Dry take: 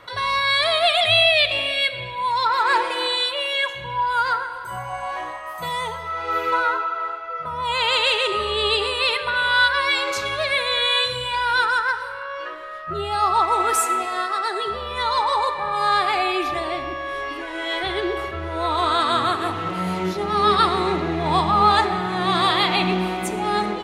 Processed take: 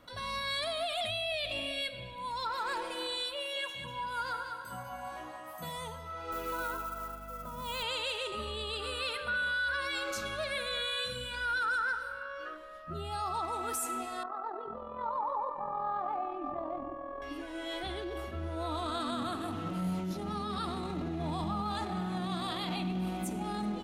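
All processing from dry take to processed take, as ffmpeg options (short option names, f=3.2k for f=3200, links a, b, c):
-filter_complex "[0:a]asettb=1/sr,asplit=3[a][b][c];[a]atrim=end=3.364[d];[b]atrim=start=3.36:end=5.78,asetpts=PTS-STARTPTS,afade=t=in:d=0.004:c=qsin,afade=t=out:st=2.416:d=0.004:c=qsin,highpass=87,aecho=1:1:197|394|591|788|985:0.447|0.192|0.0826|0.0355|0.0153,atrim=end_sample=106722[e];[c]atrim=start=5.776[f];[d][e]acrossfade=d=0.004:c1=hsin:c2=qsin[g];[g][f]acrossfade=d=0.004:c1=qsin:c2=hsin,asettb=1/sr,asplit=3[h][i][j];[h]atrim=end=6.324[k];[i]atrim=start=6.32:end=7.83,asetpts=PTS-STARTPTS,afade=t=in:d=0.004:c=qsin,afade=t=out:st=1.506:d=0.004:c=qsin,highpass=140,acrusher=bits=5:mode=log:mix=0:aa=0.000001,aeval=exprs='val(0)+0.00631*(sin(2*PI*50*n/s)+sin(2*PI*2*50*n/s)/2+sin(2*PI*3*50*n/s)/3+sin(2*PI*4*50*n/s)/4+sin(2*PI*5*50*n/s)/5)':c=same[l];[j]atrim=start=7.826[m];[k][l]acrossfade=d=0.004:c1=hsin:c2=qsin[n];[n][m]acrossfade=d=0.004:c1=qsin:c2=hsin,asettb=1/sr,asplit=3[o][p][q];[o]atrim=end=8.734[r];[p]atrim=start=8.73:end=12.57,asetpts=PTS-STARTPTS,afade=t=in:d=0.004:c=qsin,afade=t=out:st=3.836:d=0.004:c=qsin,equalizer=f=1.4k:t=o:w=0.47:g=9.5,bandreject=f=1k:w=8.3[s];[q]atrim=start=12.566[t];[r][s]acrossfade=d=0.004:c1=hsin:c2=qsin[u];[u][t]acrossfade=d=0.004:c1=qsin:c2=hsin,asettb=1/sr,asplit=3[v][w][x];[v]atrim=end=14.234[y];[w]atrim=start=14.23:end=17.22,asetpts=PTS-STARTPTS,afade=t=in:d=0.004:c=qsin,afade=t=out:st=2.986:d=0.004:c=qsin,lowpass=f=980:t=q:w=2.4,equalizer=f=75:w=1.9:g=-12.5,tremolo=f=42:d=0.571[z];[x]atrim=start=17.216[aa];[y][z]acrossfade=d=0.004:c1=hsin:c2=qsin[ab];[ab][aa]acrossfade=d=0.004:c1=qsin:c2=hsin,equalizer=f=125:t=o:w=1:g=-9,equalizer=f=250:t=o:w=1:g=8,equalizer=f=500:t=o:w=1:g=-3,equalizer=f=1k:t=o:w=1:g=-10,equalizer=f=2k:t=o:w=1:g=-12,equalizer=f=4k:t=o:w=1:g=-7,equalizer=f=8k:t=o:w=1:g=-4,alimiter=limit=-22.5dB:level=0:latency=1:release=12,equalizer=f=390:w=2.4:g=-11.5,volume=-2.5dB"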